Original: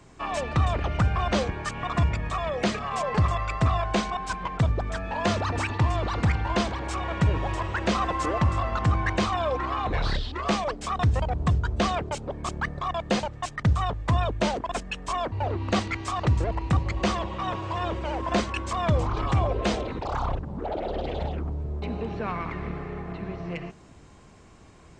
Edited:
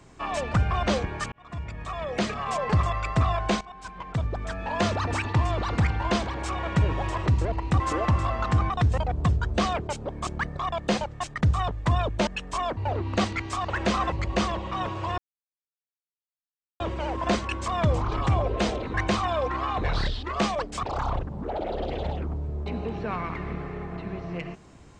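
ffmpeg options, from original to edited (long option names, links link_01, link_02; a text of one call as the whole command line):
ffmpeg -i in.wav -filter_complex "[0:a]asplit=13[link_01][link_02][link_03][link_04][link_05][link_06][link_07][link_08][link_09][link_10][link_11][link_12][link_13];[link_01]atrim=end=0.542[link_14];[link_02]atrim=start=0.988:end=1.77,asetpts=PTS-STARTPTS,afade=type=out:start_time=0.778:duration=0.004:curve=hsin[link_15];[link_03]atrim=start=1.77:end=4.06,asetpts=PTS-STARTPTS,afade=type=in:duration=1.04,afade=type=out:start_time=2.286:duration=0.004:curve=hsin:silence=0.149624[link_16];[link_04]atrim=start=4.06:end=7.712,asetpts=PTS-STARTPTS,afade=type=in:duration=1.12:silence=0.149624[link_17];[link_05]atrim=start=16.248:end=16.792[link_18];[link_06]atrim=start=8.128:end=9.032[link_19];[link_07]atrim=start=10.918:end=14.492[link_20];[link_08]atrim=start=14.818:end=16.252[link_21];[link_09]atrim=start=7.708:end=8.132[link_22];[link_10]atrim=start=16.788:end=17.85,asetpts=PTS-STARTPTS,afade=type=out:start_time=1.058:duration=0.004:curve=hsin,apad=pad_dur=1.62[link_23];[link_11]atrim=start=17.85:end=19.992,asetpts=PTS-STARTPTS,afade=type=in:duration=0.004:curve=hsin[link_24];[link_12]atrim=start=9.028:end=10.922[link_25];[link_13]atrim=start=19.988[link_26];[link_15][link_16][link_17]concat=n=3:v=0:a=1[link_27];[link_14][link_27]acrossfade=duration=0.004:curve1=hsin:curve2=hsin[link_28];[link_28][link_18]acrossfade=duration=0.004:curve1=hsin:curve2=hsin[link_29];[link_29][link_19]acrossfade=duration=0.004:curve1=hsin:curve2=hsin[link_30];[link_30][link_20]acrossfade=duration=0.004:curve1=hsin:curve2=hsin[link_31];[link_31][link_21]acrossfade=duration=0.004:curve1=hsin:curve2=hsin[link_32];[link_32][link_22]acrossfade=duration=0.004:curve1=hsin:curve2=hsin[link_33];[link_23][link_24]concat=n=2:v=0:a=1[link_34];[link_33][link_34]acrossfade=duration=0.004:curve1=hsin:curve2=hsin[link_35];[link_35][link_25]acrossfade=duration=0.004:curve1=hsin:curve2=hsin[link_36];[link_36][link_26]acrossfade=duration=0.004:curve1=hsin:curve2=hsin" out.wav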